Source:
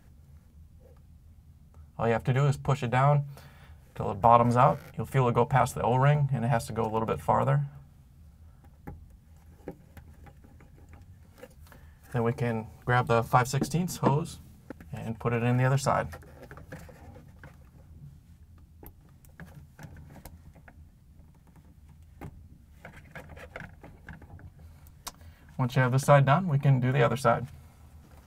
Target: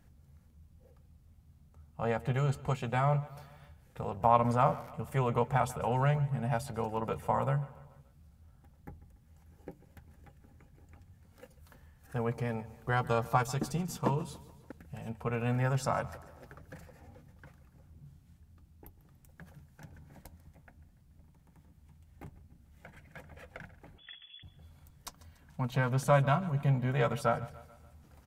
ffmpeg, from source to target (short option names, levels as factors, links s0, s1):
-filter_complex "[0:a]asettb=1/sr,asplit=3[s0][s1][s2];[s0]atrim=end=23.984[s3];[s1]atrim=start=23.98:end=24.43,asetpts=PTS-STARTPTS,afade=t=in:d=0.004:c=qsin,afade=t=out:st=0.446:d=0.004:c=qsin,lowpass=f=3000:t=q:w=0.5098,lowpass=f=3000:t=q:w=0.6013,lowpass=f=3000:t=q:w=0.9,lowpass=f=3000:t=q:w=2.563,afreqshift=-3500[s4];[s2]atrim=start=24.426[s5];[s3][s4]acrossfade=d=0.004:c1=hsin:c2=qsin[s6];[s6][s5]acrossfade=d=0.004:c1=qsin:c2=hsin,asplit=2[s7][s8];[s8]aecho=0:1:144|288|432|576:0.112|0.0572|0.0292|0.0149[s9];[s7][s9]amix=inputs=2:normalize=0,volume=0.531"